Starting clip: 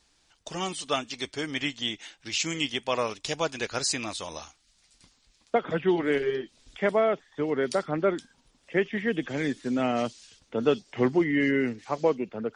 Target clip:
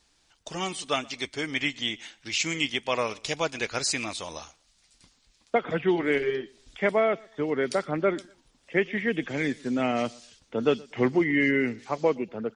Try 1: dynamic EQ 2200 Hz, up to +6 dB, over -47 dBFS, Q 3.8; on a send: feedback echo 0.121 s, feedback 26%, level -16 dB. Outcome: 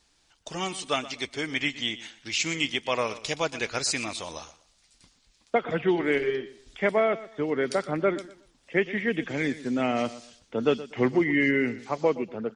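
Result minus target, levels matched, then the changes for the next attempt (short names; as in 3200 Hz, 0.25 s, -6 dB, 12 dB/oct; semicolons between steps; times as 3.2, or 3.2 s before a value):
echo-to-direct +8.5 dB
change: feedback echo 0.121 s, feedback 26%, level -24.5 dB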